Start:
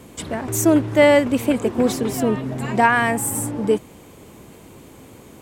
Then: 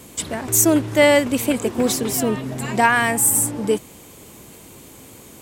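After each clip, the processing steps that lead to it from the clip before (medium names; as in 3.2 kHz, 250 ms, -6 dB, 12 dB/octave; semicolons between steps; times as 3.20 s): treble shelf 3.2 kHz +11 dB; trim -1.5 dB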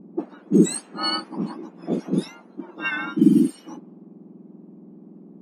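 spectrum inverted on a logarithmic axis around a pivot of 1.6 kHz; level-controlled noise filter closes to 520 Hz, open at -7.5 dBFS; trim -7.5 dB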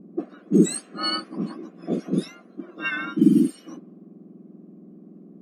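Butterworth band-stop 890 Hz, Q 3.7; trim -1 dB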